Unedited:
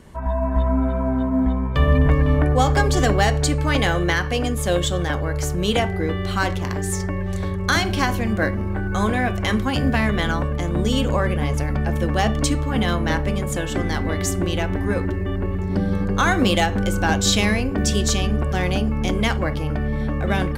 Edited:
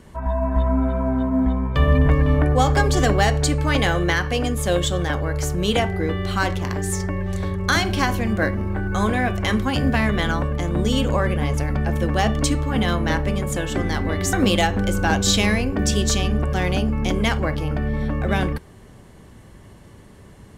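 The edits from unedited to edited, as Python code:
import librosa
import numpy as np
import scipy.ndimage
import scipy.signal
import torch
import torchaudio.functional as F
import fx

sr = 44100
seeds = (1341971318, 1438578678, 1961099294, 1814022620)

y = fx.edit(x, sr, fx.cut(start_s=14.33, length_s=1.99), tone=tone)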